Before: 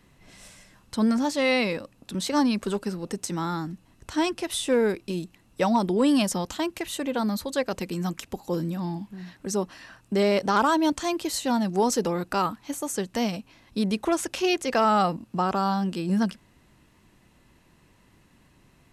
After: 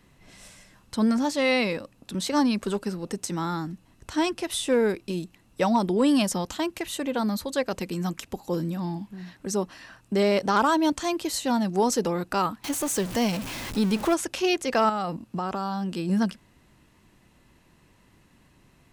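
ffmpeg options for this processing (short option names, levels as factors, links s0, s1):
-filter_complex "[0:a]asettb=1/sr,asplit=3[s0][s1][s2];[s0]atrim=end=12.644[s3];[s1]atrim=start=12.64:end=14.14,asetpts=PTS-STARTPTS,afade=t=in:d=0.004:c=qsin,afade=t=out:st=1.496:d=0.004:c=qsin,aeval=exprs='val(0)+0.5*0.0335*sgn(val(0))':c=same[s4];[s2]atrim=start=14.136[s5];[s3][s4]acrossfade=d=0.004:c1=hsin:c2=qsin[s6];[s6][s5]acrossfade=d=0.004:c1=qsin:c2=hsin,asettb=1/sr,asplit=3[s7][s8][s9];[s7]atrim=end=14.894[s10];[s8]atrim=start=14.89:end=15.98,asetpts=PTS-STARTPTS,afade=t=in:d=0.004:c=qsin,afade=t=out:st=1.086:d=0.004:c=qsin,acompressor=threshold=0.0562:ratio=6:attack=3.2:release=140:knee=1:detection=peak[s11];[s9]atrim=start=15.976[s12];[s10][s11]acrossfade=d=0.004:c1=hsin:c2=qsin[s13];[s13][s12]acrossfade=d=0.004:c1=qsin:c2=hsin"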